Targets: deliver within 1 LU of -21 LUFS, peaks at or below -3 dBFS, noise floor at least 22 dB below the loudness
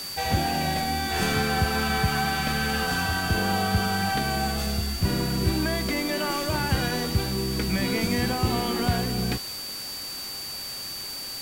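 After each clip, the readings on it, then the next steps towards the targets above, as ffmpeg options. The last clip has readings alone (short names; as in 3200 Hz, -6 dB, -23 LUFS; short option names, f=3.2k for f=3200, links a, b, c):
steady tone 4600 Hz; tone level -34 dBFS; noise floor -35 dBFS; noise floor target -48 dBFS; loudness -26.0 LUFS; peak -11.0 dBFS; loudness target -21.0 LUFS
-> -af "bandreject=f=4.6k:w=30"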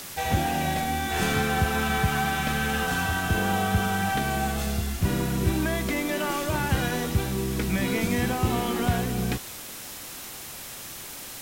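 steady tone none; noise floor -40 dBFS; noise floor target -49 dBFS
-> -af "afftdn=nr=9:nf=-40"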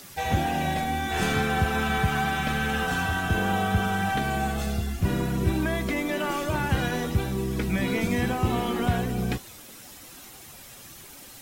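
noise floor -46 dBFS; noise floor target -49 dBFS
-> -af "afftdn=nr=6:nf=-46"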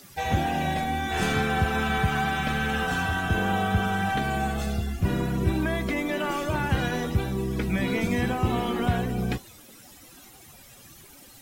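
noise floor -50 dBFS; loudness -26.5 LUFS; peak -11.5 dBFS; loudness target -21.0 LUFS
-> -af "volume=5.5dB"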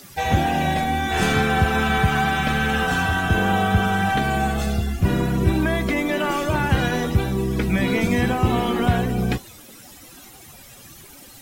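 loudness -21.0 LUFS; peak -6.0 dBFS; noise floor -44 dBFS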